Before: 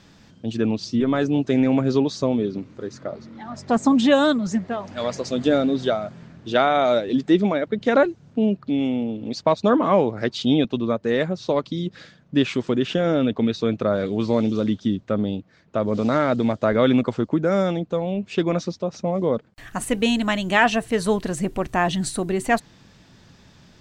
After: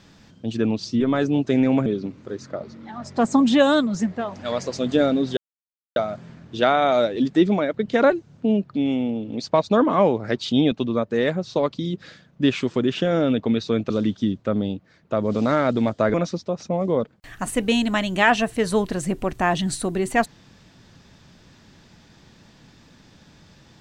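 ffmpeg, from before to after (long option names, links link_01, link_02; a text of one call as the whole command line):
ffmpeg -i in.wav -filter_complex "[0:a]asplit=5[link_01][link_02][link_03][link_04][link_05];[link_01]atrim=end=1.862[link_06];[link_02]atrim=start=2.378:end=5.89,asetpts=PTS-STARTPTS,afade=type=out:start_time=3.508:duration=0.004:curve=hsin,apad=pad_dur=0.59[link_07];[link_03]atrim=start=5.89:end=13.832,asetpts=PTS-STARTPTS,afade=type=in:duration=0.004:curve=hsin[link_08];[link_04]atrim=start=14.528:end=16.772[link_09];[link_05]atrim=start=18.478[link_10];[link_07][link_08]concat=n=2:v=0:a=1[link_11];[link_06][link_11]acrossfade=duration=0.004:curve1=hsin:curve2=hsin[link_12];[link_12][link_09]acrossfade=duration=0.004:curve1=hsin:curve2=hsin[link_13];[link_13][link_10]acrossfade=duration=0.004:curve1=hsin:curve2=hsin" out.wav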